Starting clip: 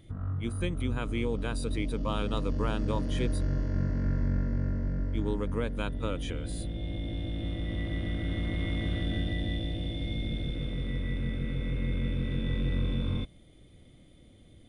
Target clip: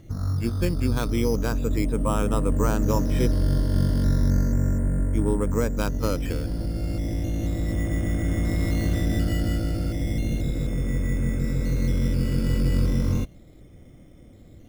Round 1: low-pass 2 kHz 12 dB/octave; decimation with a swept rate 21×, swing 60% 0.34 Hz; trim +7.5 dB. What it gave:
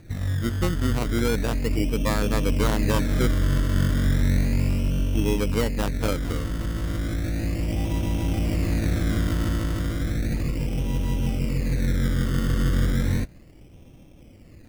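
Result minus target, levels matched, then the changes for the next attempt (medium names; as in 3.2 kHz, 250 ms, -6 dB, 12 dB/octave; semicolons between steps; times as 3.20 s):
decimation with a swept rate: distortion +8 dB
change: decimation with a swept rate 7×, swing 60% 0.34 Hz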